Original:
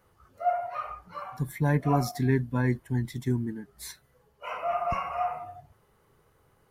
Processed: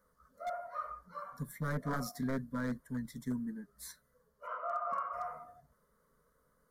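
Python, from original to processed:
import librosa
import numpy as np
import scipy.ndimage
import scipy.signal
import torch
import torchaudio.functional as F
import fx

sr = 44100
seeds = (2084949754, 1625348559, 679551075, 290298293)

y = fx.cabinet(x, sr, low_hz=400.0, low_slope=12, high_hz=3600.0, hz=(1300.0, 2100.0, 3100.0), db=(5, -8, 3), at=(4.46, 5.12), fade=0.02)
y = 10.0 ** (-19.0 / 20.0) * (np.abs((y / 10.0 ** (-19.0 / 20.0) + 3.0) % 4.0 - 2.0) - 1.0)
y = fx.fixed_phaser(y, sr, hz=530.0, stages=8)
y = y * librosa.db_to_amplitude(-5.0)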